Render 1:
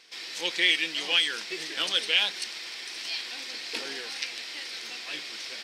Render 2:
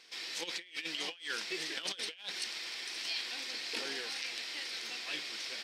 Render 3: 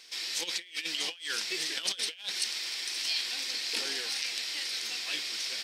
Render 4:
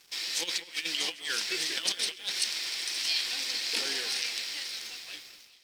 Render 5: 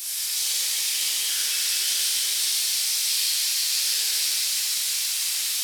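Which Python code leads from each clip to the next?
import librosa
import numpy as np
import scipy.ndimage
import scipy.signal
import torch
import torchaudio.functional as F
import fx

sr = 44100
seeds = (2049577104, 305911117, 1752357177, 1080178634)

y1 = fx.over_compress(x, sr, threshold_db=-32.0, ratio=-0.5)
y1 = F.gain(torch.from_numpy(y1), -6.0).numpy()
y2 = fx.high_shelf(y1, sr, hz=3600.0, db=11.5)
y3 = fx.fade_out_tail(y2, sr, length_s=1.48)
y3 = np.sign(y3) * np.maximum(np.abs(y3) - 10.0 ** (-52.5 / 20.0), 0.0)
y3 = fx.echo_alternate(y3, sr, ms=198, hz=2500.0, feedback_pct=59, wet_db=-12.5)
y3 = F.gain(torch.from_numpy(y3), 2.5).numpy()
y4 = fx.delta_mod(y3, sr, bps=64000, step_db=-27.0)
y4 = scipy.signal.lfilter([1.0, -0.97], [1.0], y4)
y4 = fx.rev_shimmer(y4, sr, seeds[0], rt60_s=3.9, semitones=7, shimmer_db=-8, drr_db=-9.5)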